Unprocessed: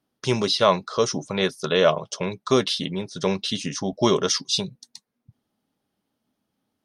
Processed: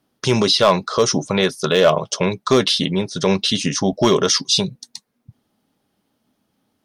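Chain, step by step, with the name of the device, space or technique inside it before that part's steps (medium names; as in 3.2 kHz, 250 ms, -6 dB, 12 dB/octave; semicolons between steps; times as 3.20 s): clipper into limiter (hard clipper -10 dBFS, distortion -20 dB; peak limiter -14 dBFS, peak gain reduction 4 dB); trim +8.5 dB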